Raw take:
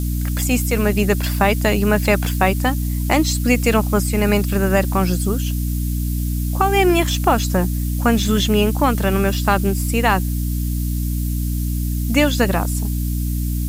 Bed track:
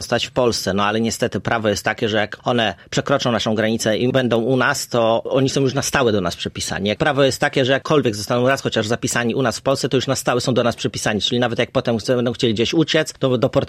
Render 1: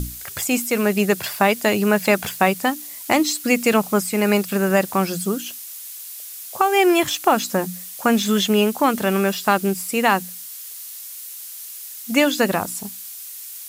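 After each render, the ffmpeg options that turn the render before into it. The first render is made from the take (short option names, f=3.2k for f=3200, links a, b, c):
-af "bandreject=f=60:t=h:w=6,bandreject=f=120:t=h:w=6,bandreject=f=180:t=h:w=6,bandreject=f=240:t=h:w=6,bandreject=f=300:t=h:w=6"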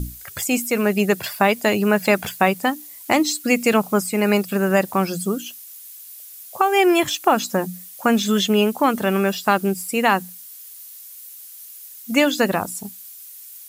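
-af "afftdn=nr=8:nf=-36"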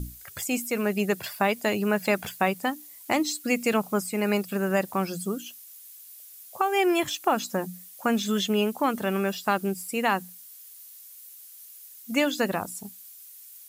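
-af "volume=-7dB"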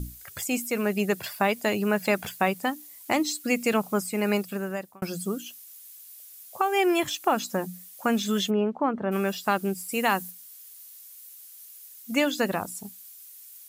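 -filter_complex "[0:a]asplit=3[a][b][c];[a]afade=t=out:st=8.49:d=0.02[d];[b]lowpass=1.3k,afade=t=in:st=8.49:d=0.02,afade=t=out:st=9.11:d=0.02[e];[c]afade=t=in:st=9.11:d=0.02[f];[d][e][f]amix=inputs=3:normalize=0,asettb=1/sr,asplit=3[g][h][i];[g]atrim=end=9.914[j];[h]atrim=start=9.91:end=10.31,asetpts=PTS-STARTPTS,afade=t=in:d=0.004:c=qsin,afade=t=out:st=0.396:d=0.004:c=qsin,highshelf=f=5.4k:g=7.5[k];[i]atrim=start=10.306[l];[j][k]acrossfade=d=0.004:c1=hsin:c2=qsin[m];[m][l]acrossfade=d=0.004:c1=qsin:c2=hsin,asplit=2[n][o];[n]atrim=end=5.02,asetpts=PTS-STARTPTS,afade=t=out:st=4.35:d=0.67[p];[o]atrim=start=5.02,asetpts=PTS-STARTPTS,afade=t=in:d=0.004:c=hsin[q];[p][q]concat=n=2:v=0:a=1"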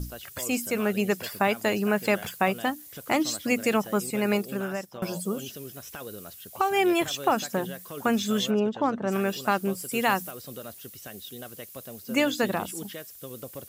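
-filter_complex "[1:a]volume=-24dB[a];[0:a][a]amix=inputs=2:normalize=0"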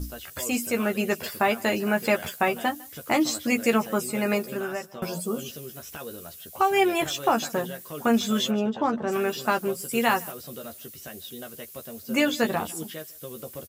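-filter_complex "[0:a]asplit=2[a][b];[b]adelay=13,volume=-4.5dB[c];[a][c]amix=inputs=2:normalize=0,aecho=1:1:153:0.0631"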